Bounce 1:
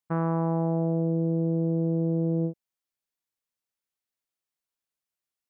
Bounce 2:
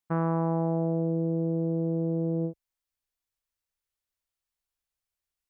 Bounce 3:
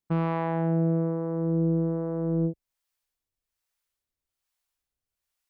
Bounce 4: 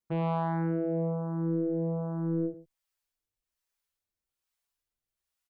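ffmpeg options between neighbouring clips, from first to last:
-af "asubboost=boost=9.5:cutoff=66"
-filter_complex "[0:a]asoftclip=type=tanh:threshold=-21.5dB,acrossover=split=490[a][b];[a]aeval=exprs='val(0)*(1-0.7/2+0.7/2*cos(2*PI*1.2*n/s))':c=same[c];[b]aeval=exprs='val(0)*(1-0.7/2-0.7/2*cos(2*PI*1.2*n/s))':c=same[d];[c][d]amix=inputs=2:normalize=0,volume=6.5dB"
-filter_complex "[0:a]aecho=1:1:114:0.141,asplit=2[a][b];[b]adelay=6.1,afreqshift=1.2[c];[a][c]amix=inputs=2:normalize=1"

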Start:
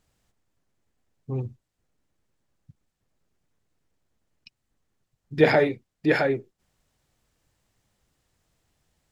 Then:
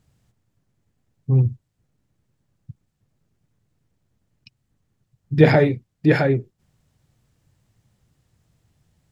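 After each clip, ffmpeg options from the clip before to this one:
-af "equalizer=f=120:w=0.72:g=13.5,volume=1dB"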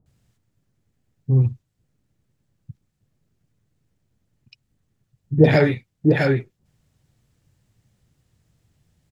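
-filter_complex "[0:a]acrossover=split=920[a][b];[b]adelay=60[c];[a][c]amix=inputs=2:normalize=0"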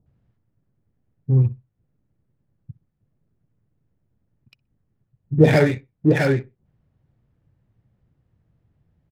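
-af "aecho=1:1:62|124:0.0794|0.0199,adynamicsmooth=sensitivity=7.5:basefreq=1.7k"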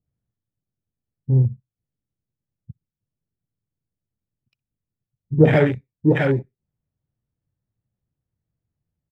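-af "afwtdn=0.0562"

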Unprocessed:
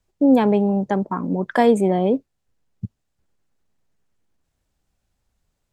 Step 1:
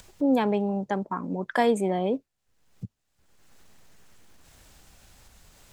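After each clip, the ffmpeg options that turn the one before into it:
-af "acompressor=mode=upward:threshold=-25dB:ratio=2.5,tiltshelf=f=740:g=-3.5,volume=-5.5dB"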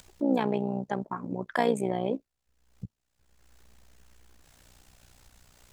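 -af "tremolo=f=61:d=0.788"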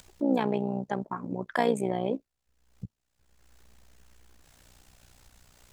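-af anull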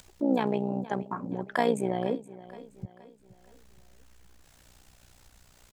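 -af "aecho=1:1:472|944|1416|1888:0.133|0.0587|0.0258|0.0114"

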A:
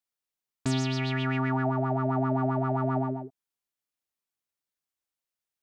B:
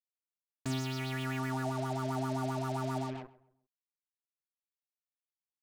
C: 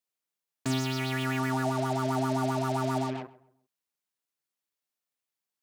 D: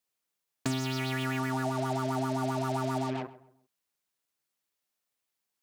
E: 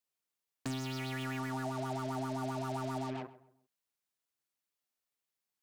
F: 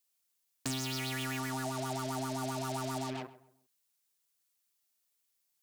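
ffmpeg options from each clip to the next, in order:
-filter_complex "[0:a]bandreject=f=50:t=h:w=6,bandreject=f=100:t=h:w=6,bandreject=f=150:t=h:w=6,bandreject=f=200:t=h:w=6,bandreject=f=250:t=h:w=6,bandreject=f=300:t=h:w=6,bandreject=f=350:t=h:w=6,bandreject=f=400:t=h:w=6,acrusher=bits=5:mix=0:aa=0.5,asplit=2[a][b];[b]adelay=132,lowpass=f=1.6k:p=1,volume=-17dB,asplit=2[c][d];[d]adelay=132,lowpass=f=1.6k:p=1,volume=0.34,asplit=2[e][f];[f]adelay=132,lowpass=f=1.6k:p=1,volume=0.34[g];[a][c][e][g]amix=inputs=4:normalize=0,volume=-7dB"
-af "highpass=120,volume=6.5dB"
-af "acompressor=threshold=-31dB:ratio=6,volume=4dB"
-af "asoftclip=type=tanh:threshold=-21dB,volume=-5.5dB"
-af "highshelf=f=3.3k:g=12"

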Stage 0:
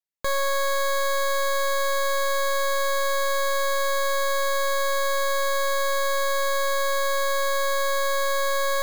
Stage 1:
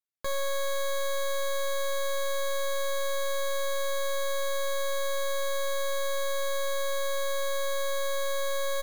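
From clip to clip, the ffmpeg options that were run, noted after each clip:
-af "aecho=1:1:13|73:0.422|0.168,volume=-7dB"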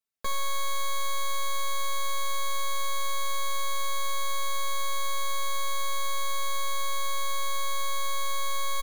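-af "aecho=1:1:4.5:0.79"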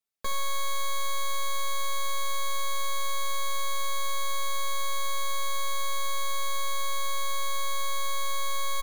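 -af "bandreject=f=85.36:t=h:w=4,bandreject=f=170.72:t=h:w=4,bandreject=f=256.08:t=h:w=4,bandreject=f=341.44:t=h:w=4,bandreject=f=426.8:t=h:w=4,bandreject=f=512.16:t=h:w=4,bandreject=f=597.52:t=h:w=4,bandreject=f=682.88:t=h:w=4,bandreject=f=768.24:t=h:w=4,bandreject=f=853.6:t=h:w=4,bandreject=f=938.96:t=h:w=4,bandreject=f=1.02432k:t=h:w=4,bandreject=f=1.10968k:t=h:w=4,bandreject=f=1.19504k:t=h:w=4,bandreject=f=1.2804k:t=h:w=4,bandreject=f=1.36576k:t=h:w=4,bandreject=f=1.45112k:t=h:w=4,bandreject=f=1.53648k:t=h:w=4,bandreject=f=1.62184k:t=h:w=4,bandreject=f=1.7072k:t=h:w=4,bandreject=f=1.79256k:t=h:w=4,bandreject=f=1.87792k:t=h:w=4,bandreject=f=1.96328k:t=h:w=4,bandreject=f=2.04864k:t=h:w=4,bandreject=f=2.134k:t=h:w=4,bandreject=f=2.21936k:t=h:w=4,bandreject=f=2.30472k:t=h:w=4,bandreject=f=2.39008k:t=h:w=4,bandreject=f=2.47544k:t=h:w=4,bandreject=f=2.5608k:t=h:w=4,bandreject=f=2.64616k:t=h:w=4,bandreject=f=2.73152k:t=h:w=4,bandreject=f=2.81688k:t=h:w=4,bandreject=f=2.90224k:t=h:w=4"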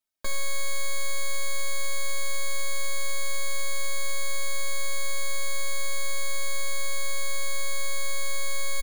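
-af "aecho=1:1:3.2:0.68"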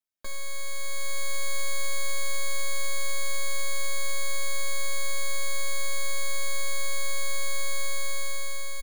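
-af "dynaudnorm=f=390:g=5:m=6.5dB,volume=-6.5dB"

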